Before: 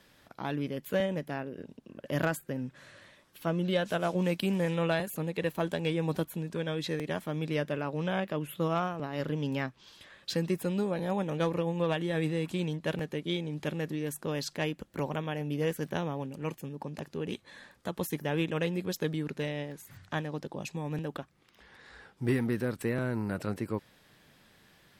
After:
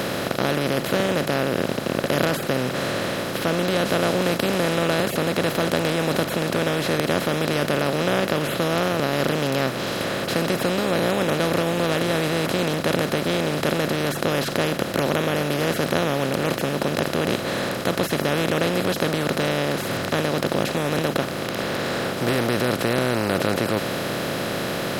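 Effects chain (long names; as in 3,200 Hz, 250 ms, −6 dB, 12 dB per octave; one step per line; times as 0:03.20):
compressor on every frequency bin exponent 0.2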